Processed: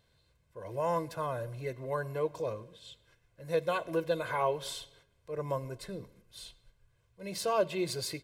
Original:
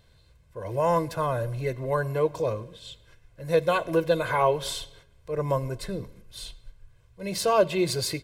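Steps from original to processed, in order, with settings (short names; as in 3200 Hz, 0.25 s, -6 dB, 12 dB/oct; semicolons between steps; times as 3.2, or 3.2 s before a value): low shelf 69 Hz -11.5 dB; gain -7.5 dB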